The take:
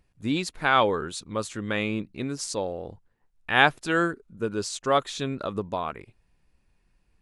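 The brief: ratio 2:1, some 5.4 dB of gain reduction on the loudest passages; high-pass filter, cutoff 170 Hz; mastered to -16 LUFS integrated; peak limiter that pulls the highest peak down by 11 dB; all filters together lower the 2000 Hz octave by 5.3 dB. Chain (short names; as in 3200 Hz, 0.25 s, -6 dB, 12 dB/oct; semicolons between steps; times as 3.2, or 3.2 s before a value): HPF 170 Hz; bell 2000 Hz -7.5 dB; compressor 2:1, threshold -26 dBFS; gain +18.5 dB; limiter -3 dBFS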